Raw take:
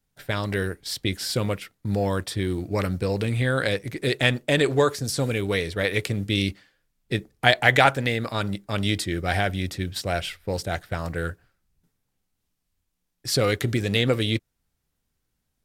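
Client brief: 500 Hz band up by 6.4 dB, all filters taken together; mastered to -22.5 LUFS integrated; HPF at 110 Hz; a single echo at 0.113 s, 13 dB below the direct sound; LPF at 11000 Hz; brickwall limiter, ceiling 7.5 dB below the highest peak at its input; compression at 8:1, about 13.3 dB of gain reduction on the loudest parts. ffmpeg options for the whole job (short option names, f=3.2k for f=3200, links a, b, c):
-af "highpass=110,lowpass=11k,equalizer=f=500:t=o:g=7.5,acompressor=threshold=-23dB:ratio=8,alimiter=limit=-17dB:level=0:latency=1,aecho=1:1:113:0.224,volume=7dB"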